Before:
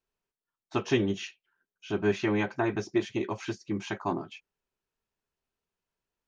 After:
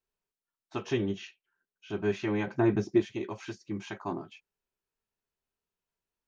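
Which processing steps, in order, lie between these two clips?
0:02.47–0:03.02: parametric band 190 Hz +10 dB 2.7 octaves
harmonic and percussive parts rebalanced harmonic +4 dB
0:00.93–0:01.90: high-frequency loss of the air 60 metres
level −6 dB

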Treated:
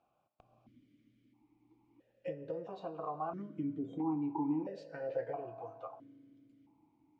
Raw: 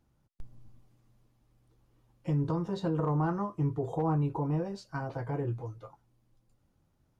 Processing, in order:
downward compressor 5 to 1, threshold −37 dBFS, peak gain reduction 11 dB
on a send at −11.5 dB: convolution reverb RT60 2.8 s, pre-delay 3 ms
on the sum: formant filter that steps through the vowels 1.5 Hz
level +13 dB

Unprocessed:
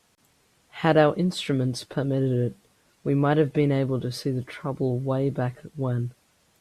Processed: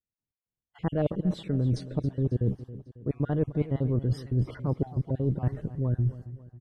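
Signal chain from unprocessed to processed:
time-frequency cells dropped at random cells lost 30%
noise gate −50 dBFS, range −39 dB
spectral tilt −4 dB per octave
reversed playback
downward compressor, threshold −24 dBFS, peak gain reduction 15 dB
reversed playback
pitch vibrato 3.2 Hz 5.4 cents
on a send: repeating echo 273 ms, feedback 48%, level −15.5 dB

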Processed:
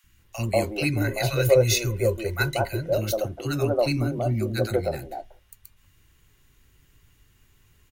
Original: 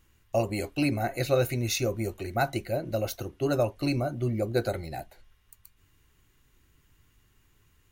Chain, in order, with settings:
0:00.85–0:02.94: comb filter 2 ms, depth 61%
three-band delay without the direct sound highs, lows, mids 40/190 ms, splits 300/1,100 Hz
level +5 dB

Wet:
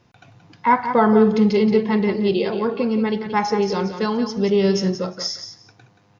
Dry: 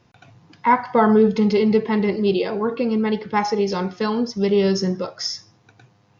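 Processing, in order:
repeating echo 177 ms, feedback 16%, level −9.5 dB

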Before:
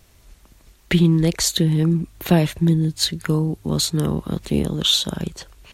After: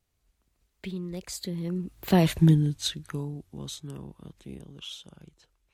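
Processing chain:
source passing by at 0:02.38, 28 m/s, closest 4.5 metres

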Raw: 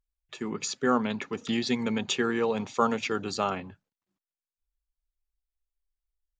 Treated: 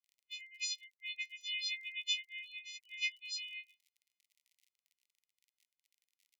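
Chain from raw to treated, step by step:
every partial snapped to a pitch grid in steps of 3 semitones
low-pass filter 3,100 Hz 12 dB per octave
downward compressor 2 to 1, threshold −29 dBFS, peak gain reduction 6.5 dB
gate on every frequency bin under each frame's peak −30 dB strong
surface crackle 44 per second −50 dBFS
linear-phase brick-wall high-pass 1,900 Hz
level −3 dB

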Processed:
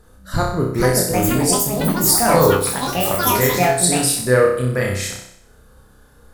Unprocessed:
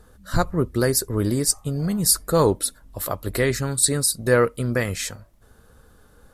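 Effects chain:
on a send: flutter between parallel walls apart 5.4 metres, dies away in 0.68 s
on the sum: delay with pitch and tempo change per echo 558 ms, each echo +6 semitones, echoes 3

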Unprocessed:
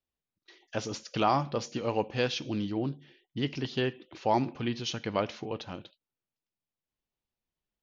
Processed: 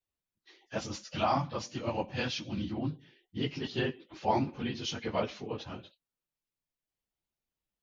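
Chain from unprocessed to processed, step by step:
random phases in long frames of 50 ms
0:00.79–0:02.91: parametric band 430 Hz −13 dB 0.3 octaves
level −2 dB

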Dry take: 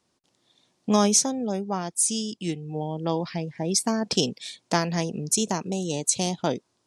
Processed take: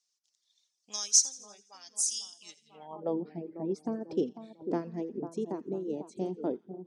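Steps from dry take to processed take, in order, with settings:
echo with a time of its own for lows and highs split 1,300 Hz, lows 496 ms, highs 84 ms, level −8 dB
band-pass filter sweep 5,900 Hz → 350 Hz, 0:02.63–0:03.15
reverb reduction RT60 1.1 s

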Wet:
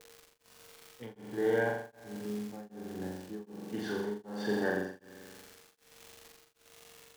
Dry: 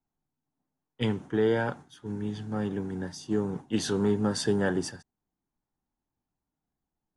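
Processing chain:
notch comb filter 1,300 Hz
steady tone 460 Hz −54 dBFS
tilt shelving filter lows −9.5 dB, about 780 Hz
notch filter 970 Hz, Q 9.6
tuned comb filter 210 Hz, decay 1.4 s, mix 50%
low-pass that shuts in the quiet parts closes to 680 Hz, open at −15 dBFS
surface crackle 180 per second −42 dBFS
flutter between parallel walls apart 7.4 metres, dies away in 1.3 s
tremolo along a rectified sine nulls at 1.3 Hz
level +3.5 dB

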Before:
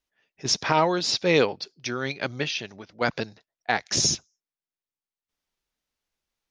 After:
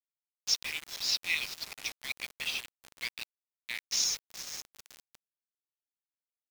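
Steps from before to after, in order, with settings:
on a send: feedback delay with all-pass diffusion 456 ms, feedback 56%, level −12 dB
on the sum: shaped tremolo saw up 5.2 Hz, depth 50%
Butterworth high-pass 2,000 Hz 72 dB per octave
bit reduction 6 bits
high-shelf EQ 4,500 Hz −5.5 dB

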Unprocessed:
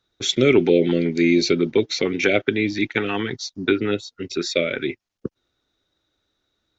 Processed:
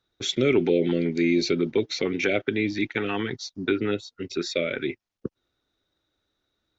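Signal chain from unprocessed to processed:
in parallel at −2 dB: brickwall limiter −13 dBFS, peak gain reduction 9 dB
on the sum: high-shelf EQ 5,600 Hz −5.5 dB
level −8 dB

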